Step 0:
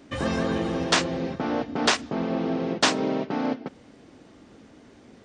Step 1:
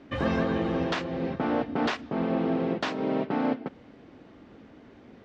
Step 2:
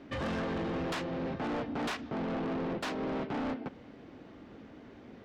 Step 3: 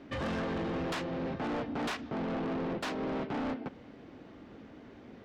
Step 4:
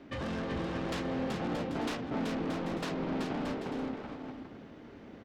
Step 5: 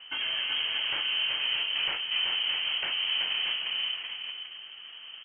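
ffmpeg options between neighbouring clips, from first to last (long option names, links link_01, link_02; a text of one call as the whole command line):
ffmpeg -i in.wav -af "alimiter=limit=-14.5dB:level=0:latency=1:release=353,lowpass=3100" out.wav
ffmpeg -i in.wav -af "asoftclip=type=tanh:threshold=-31.5dB" out.wav
ffmpeg -i in.wav -af anull out.wav
ffmpeg -i in.wav -filter_complex "[0:a]acrossover=split=450|3000[link_01][link_02][link_03];[link_02]acompressor=threshold=-38dB:ratio=6[link_04];[link_01][link_04][link_03]amix=inputs=3:normalize=0,asplit=2[link_05][link_06];[link_06]aecho=0:1:380|627|787.6|891.9|959.7:0.631|0.398|0.251|0.158|0.1[link_07];[link_05][link_07]amix=inputs=2:normalize=0,volume=-1dB" out.wav
ffmpeg -i in.wav -af "lowpass=frequency=2800:width_type=q:width=0.5098,lowpass=frequency=2800:width_type=q:width=0.6013,lowpass=frequency=2800:width_type=q:width=0.9,lowpass=frequency=2800:width_type=q:width=2.563,afreqshift=-3300,volume=4.5dB" out.wav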